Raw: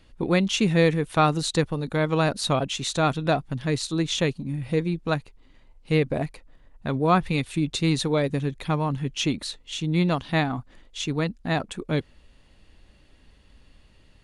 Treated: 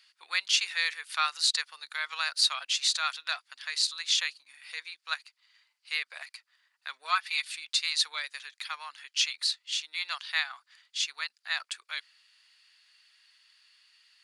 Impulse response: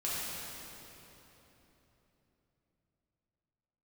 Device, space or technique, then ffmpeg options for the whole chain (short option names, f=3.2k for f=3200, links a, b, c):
headphones lying on a table: -filter_complex "[0:a]highpass=f=1.4k:w=0.5412,highpass=f=1.4k:w=1.3066,equalizer=f=4.7k:t=o:w=0.34:g=10,asettb=1/sr,asplit=3[a][b][c];[a]atrim=end=7.044[d];[b]atrim=start=7.04:end=7.45,asetpts=PTS-STARTPTS,afade=t=in:d=0.004:c=qsin,afade=t=out:st=0.406:d=0.004:c=qsin,aecho=1:1:4.6:0.59,atrim=end_sample=18081[e];[c]atrim=start=7.446[f];[d][e]acrossfade=d=0.004:c1=hsin:c2=qsin[g];[g][f]acrossfade=d=0.004:c1=qsin:c2=hsin"